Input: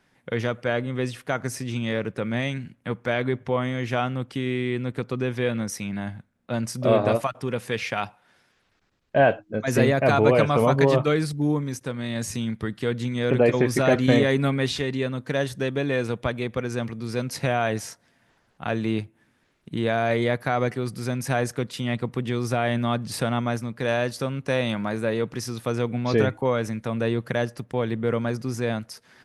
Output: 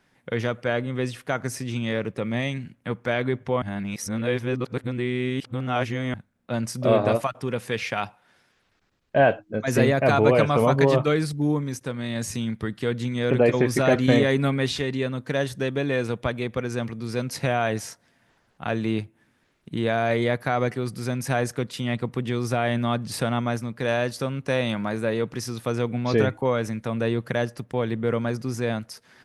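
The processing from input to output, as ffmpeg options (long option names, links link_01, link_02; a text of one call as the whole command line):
ffmpeg -i in.wav -filter_complex "[0:a]asettb=1/sr,asplit=3[link_01][link_02][link_03];[link_01]atrim=end=2.064[link_04];[link_02]atrim=start=2.06:end=2.63,asetpts=PTS-STARTPTS,afade=type=in:duration=0.004:curve=qsin,afade=type=out:start_time=0.566:duration=0.004:curve=qsin,bandreject=frequency=1500:width=6.1[link_05];[link_03]atrim=start=2.626[link_06];[link_04][link_05]acrossfade=duration=0.004:curve1=hsin:curve2=qsin[link_07];[link_07][link_06]acrossfade=duration=0.004:curve1=qsin:curve2=hsin,asplit=3[link_08][link_09][link_10];[link_08]atrim=end=3.622[link_11];[link_09]atrim=start=3.618:end=6.142,asetpts=PTS-STARTPTS,areverse[link_12];[link_10]atrim=start=6.138[link_13];[link_11][link_12]acrossfade=duration=0.004:curve1=hsin:curve2=hsin[link_14];[link_14][link_13]acrossfade=duration=0.004:curve1=hsin:curve2=hsin" out.wav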